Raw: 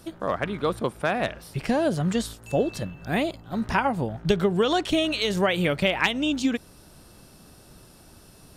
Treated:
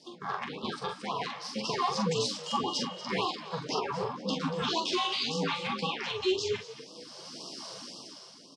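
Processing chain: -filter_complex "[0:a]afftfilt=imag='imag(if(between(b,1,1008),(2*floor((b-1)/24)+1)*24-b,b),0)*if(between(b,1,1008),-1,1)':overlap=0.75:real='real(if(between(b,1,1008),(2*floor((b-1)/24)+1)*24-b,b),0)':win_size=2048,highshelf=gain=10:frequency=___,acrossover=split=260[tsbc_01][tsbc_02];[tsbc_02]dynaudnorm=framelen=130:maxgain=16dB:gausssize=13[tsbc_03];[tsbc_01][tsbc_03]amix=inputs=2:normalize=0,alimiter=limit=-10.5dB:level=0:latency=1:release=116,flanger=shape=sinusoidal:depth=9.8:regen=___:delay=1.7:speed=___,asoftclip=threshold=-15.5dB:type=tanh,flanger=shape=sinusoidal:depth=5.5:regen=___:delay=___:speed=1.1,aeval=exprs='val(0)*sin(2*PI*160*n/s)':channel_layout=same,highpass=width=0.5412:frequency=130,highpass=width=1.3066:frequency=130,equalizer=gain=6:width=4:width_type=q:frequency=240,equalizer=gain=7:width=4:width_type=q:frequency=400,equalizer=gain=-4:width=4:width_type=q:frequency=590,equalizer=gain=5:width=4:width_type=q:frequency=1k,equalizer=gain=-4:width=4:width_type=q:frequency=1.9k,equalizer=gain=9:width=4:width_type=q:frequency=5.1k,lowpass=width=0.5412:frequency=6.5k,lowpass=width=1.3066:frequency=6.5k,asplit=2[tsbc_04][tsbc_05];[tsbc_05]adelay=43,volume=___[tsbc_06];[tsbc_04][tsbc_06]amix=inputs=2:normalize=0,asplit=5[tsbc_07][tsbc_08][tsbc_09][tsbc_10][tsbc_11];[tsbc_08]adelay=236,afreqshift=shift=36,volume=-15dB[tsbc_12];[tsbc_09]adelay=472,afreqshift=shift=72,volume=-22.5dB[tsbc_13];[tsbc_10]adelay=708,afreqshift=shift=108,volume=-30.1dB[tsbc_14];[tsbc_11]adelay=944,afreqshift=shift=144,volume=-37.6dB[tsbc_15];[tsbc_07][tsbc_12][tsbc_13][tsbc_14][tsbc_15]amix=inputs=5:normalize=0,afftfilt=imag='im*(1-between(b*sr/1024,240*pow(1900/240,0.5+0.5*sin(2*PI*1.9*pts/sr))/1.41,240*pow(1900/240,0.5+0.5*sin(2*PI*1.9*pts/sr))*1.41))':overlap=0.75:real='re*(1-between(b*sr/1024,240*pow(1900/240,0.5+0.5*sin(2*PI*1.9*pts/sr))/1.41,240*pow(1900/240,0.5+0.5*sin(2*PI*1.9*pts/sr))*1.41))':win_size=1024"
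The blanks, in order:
2.2k, 48, 0.53, 46, 8.8, -5dB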